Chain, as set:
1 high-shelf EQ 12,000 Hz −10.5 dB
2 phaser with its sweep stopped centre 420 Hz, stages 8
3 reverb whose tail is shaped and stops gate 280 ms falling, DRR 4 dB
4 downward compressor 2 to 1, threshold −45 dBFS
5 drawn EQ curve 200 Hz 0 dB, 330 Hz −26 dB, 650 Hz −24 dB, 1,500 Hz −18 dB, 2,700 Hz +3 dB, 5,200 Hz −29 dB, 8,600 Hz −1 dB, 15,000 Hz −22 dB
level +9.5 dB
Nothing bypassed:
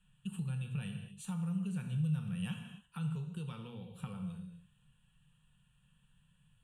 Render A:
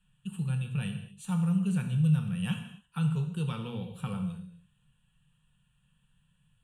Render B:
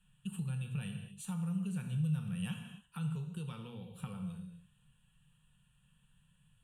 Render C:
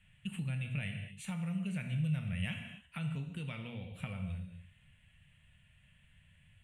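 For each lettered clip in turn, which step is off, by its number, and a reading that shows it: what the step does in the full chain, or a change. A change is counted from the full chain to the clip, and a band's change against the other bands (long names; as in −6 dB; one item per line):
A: 4, average gain reduction 6.5 dB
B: 1, 8 kHz band +2.5 dB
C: 2, change in crest factor +1.5 dB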